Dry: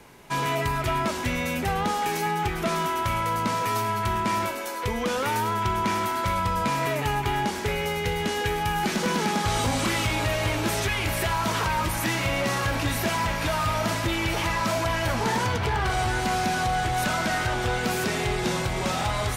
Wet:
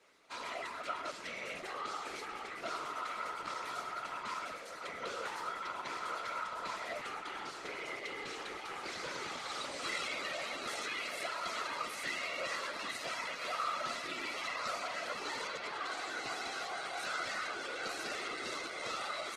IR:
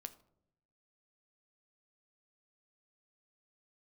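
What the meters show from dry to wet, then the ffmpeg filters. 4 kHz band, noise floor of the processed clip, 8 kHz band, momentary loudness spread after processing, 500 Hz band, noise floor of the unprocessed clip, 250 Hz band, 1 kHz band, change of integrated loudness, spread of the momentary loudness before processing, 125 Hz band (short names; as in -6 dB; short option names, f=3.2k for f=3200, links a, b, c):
-11.0 dB, -46 dBFS, -14.5 dB, 5 LU, -15.5 dB, -30 dBFS, -22.5 dB, -14.5 dB, -13.5 dB, 2 LU, -34.5 dB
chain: -filter_complex "[0:a]highpass=f=300:w=0.5412,highpass=f=300:w=1.3066,equalizer=f=790:t=q:w=4:g=-10,equalizer=f=1.2k:t=q:w=4:g=6,equalizer=f=2.2k:t=q:w=4:g=4,equalizer=f=4.2k:t=q:w=4:g=7,lowpass=f=9.5k:w=0.5412,lowpass=f=9.5k:w=1.3066,aecho=1:1:1.5:0.39,asplit=2[a][b];[b]adelay=1049,lowpass=f=2.9k:p=1,volume=-9dB,asplit=2[c][d];[d]adelay=1049,lowpass=f=2.9k:p=1,volume=0.51,asplit=2[e][f];[f]adelay=1049,lowpass=f=2.9k:p=1,volume=0.51,asplit=2[g][h];[h]adelay=1049,lowpass=f=2.9k:p=1,volume=0.51,asplit=2[i][j];[j]adelay=1049,lowpass=f=2.9k:p=1,volume=0.51,asplit=2[k][l];[l]adelay=1049,lowpass=f=2.9k:p=1,volume=0.51[m];[c][e][g][i][k][m]amix=inputs=6:normalize=0[n];[a][n]amix=inputs=2:normalize=0,afftfilt=real='hypot(re,im)*cos(2*PI*random(0))':imag='hypot(re,im)*sin(2*PI*random(1))':win_size=512:overlap=0.75,volume=-8dB" -ar 48000 -c:a libopus -b:a 16k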